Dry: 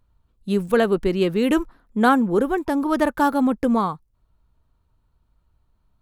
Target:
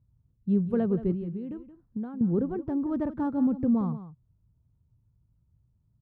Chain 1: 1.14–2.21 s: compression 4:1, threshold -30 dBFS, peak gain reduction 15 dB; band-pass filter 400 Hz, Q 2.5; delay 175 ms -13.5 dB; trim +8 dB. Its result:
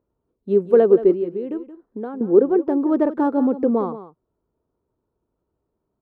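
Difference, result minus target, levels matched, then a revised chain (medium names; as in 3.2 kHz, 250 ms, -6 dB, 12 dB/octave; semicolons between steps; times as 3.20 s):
125 Hz band -15.0 dB
1.14–2.21 s: compression 4:1, threshold -30 dBFS, peak gain reduction 15 dB; band-pass filter 120 Hz, Q 2.5; delay 175 ms -13.5 dB; trim +8 dB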